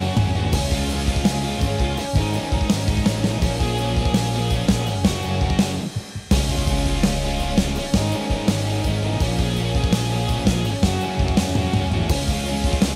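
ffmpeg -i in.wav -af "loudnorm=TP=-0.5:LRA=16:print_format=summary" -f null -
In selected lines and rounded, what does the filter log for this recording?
Input Integrated:    -21.2 LUFS
Input True Peak:      -6.1 dBTP
Input LRA:             0.4 LU
Input Threshold:     -31.2 LUFS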